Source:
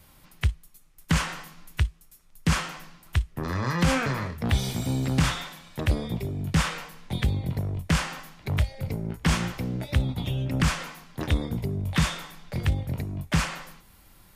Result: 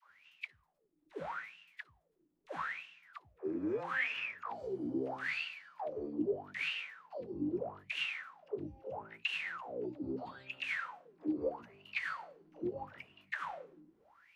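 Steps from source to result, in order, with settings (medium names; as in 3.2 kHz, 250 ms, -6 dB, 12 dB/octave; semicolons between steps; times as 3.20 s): peak limiter -21.5 dBFS, peak gain reduction 10.5 dB; formant shift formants +4 st; wah-wah 0.78 Hz 300–2800 Hz, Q 15; phase dispersion lows, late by 109 ms, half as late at 420 Hz; trim +9.5 dB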